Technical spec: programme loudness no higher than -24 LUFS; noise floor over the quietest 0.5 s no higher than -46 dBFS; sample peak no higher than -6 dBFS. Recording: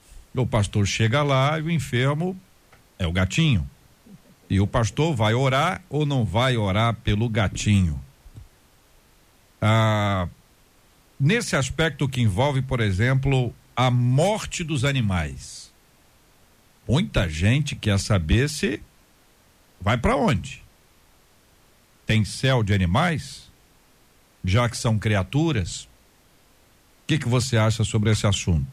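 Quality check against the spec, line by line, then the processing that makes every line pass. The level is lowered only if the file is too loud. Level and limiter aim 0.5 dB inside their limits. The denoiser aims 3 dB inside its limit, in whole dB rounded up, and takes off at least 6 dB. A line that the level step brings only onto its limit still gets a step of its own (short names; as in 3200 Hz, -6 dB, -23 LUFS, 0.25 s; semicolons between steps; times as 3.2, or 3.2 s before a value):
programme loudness -22.5 LUFS: fail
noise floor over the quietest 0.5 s -57 dBFS: OK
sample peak -10.5 dBFS: OK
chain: gain -2 dB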